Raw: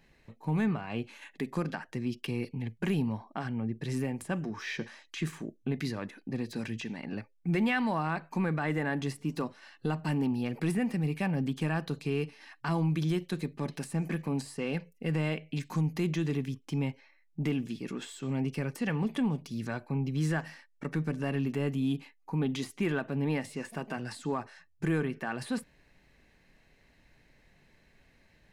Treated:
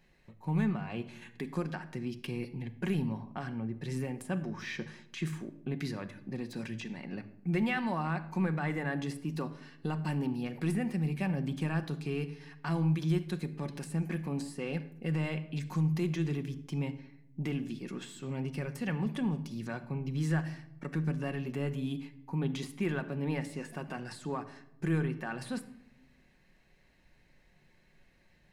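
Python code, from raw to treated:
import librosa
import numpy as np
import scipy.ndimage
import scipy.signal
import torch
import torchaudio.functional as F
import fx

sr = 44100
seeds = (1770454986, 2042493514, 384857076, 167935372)

y = fx.room_shoebox(x, sr, seeds[0], volume_m3=2600.0, walls='furnished', distance_m=0.97)
y = y * librosa.db_to_amplitude(-3.5)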